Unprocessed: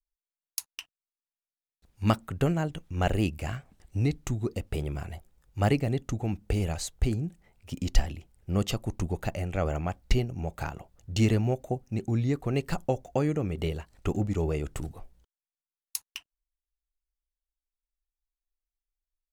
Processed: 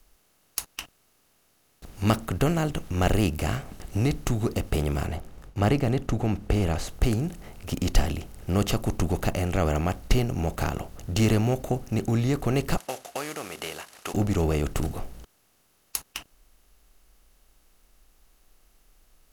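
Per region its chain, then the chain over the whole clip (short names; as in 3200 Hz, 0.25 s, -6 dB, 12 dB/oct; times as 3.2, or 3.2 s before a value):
5.07–6.89 LPF 2200 Hz 6 dB/oct + gate with hold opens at -53 dBFS, closes at -61 dBFS
12.77–14.14 CVSD 64 kbps + HPF 1100 Hz
whole clip: per-bin compression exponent 0.6; high shelf 8900 Hz +3.5 dB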